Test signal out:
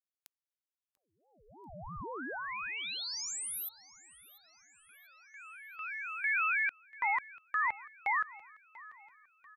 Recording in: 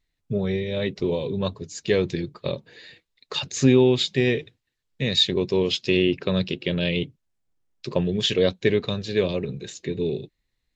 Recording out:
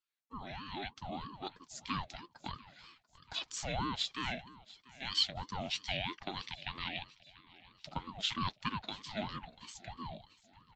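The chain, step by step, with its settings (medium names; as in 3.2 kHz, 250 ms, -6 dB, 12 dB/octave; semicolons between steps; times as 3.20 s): Bessel high-pass 590 Hz, order 4; on a send: feedback delay 690 ms, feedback 48%, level -20 dB; on the sum: ring modulator with a swept carrier 450 Hz, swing 55%, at 3.1 Hz; trim -8 dB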